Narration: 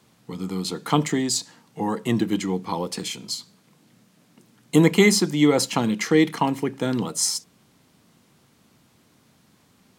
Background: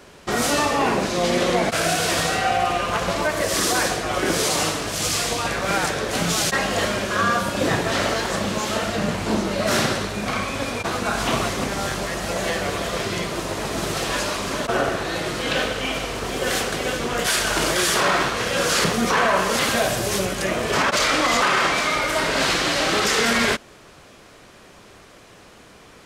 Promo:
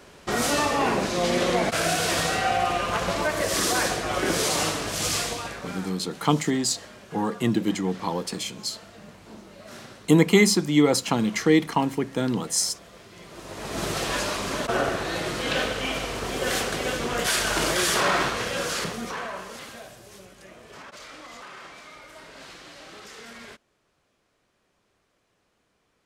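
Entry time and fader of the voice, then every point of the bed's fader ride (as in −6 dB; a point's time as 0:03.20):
5.35 s, −1.0 dB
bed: 0:05.17 −3 dB
0:06.03 −23 dB
0:13.10 −23 dB
0:13.82 −3 dB
0:18.29 −3 dB
0:19.98 −24 dB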